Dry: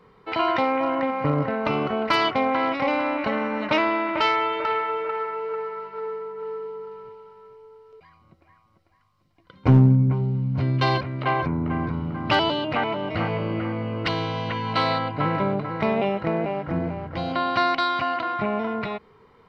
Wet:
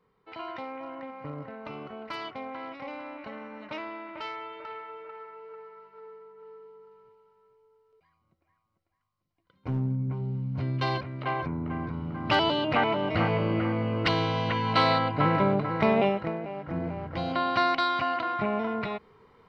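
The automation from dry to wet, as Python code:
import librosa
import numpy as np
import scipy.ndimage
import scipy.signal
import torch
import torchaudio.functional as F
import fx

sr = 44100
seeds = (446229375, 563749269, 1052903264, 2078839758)

y = fx.gain(x, sr, db=fx.line((9.67, -16.0), (10.31, -7.0), (11.9, -7.0), (12.76, 0.0), (16.06, 0.0), (16.41, -10.5), (17.02, -3.0)))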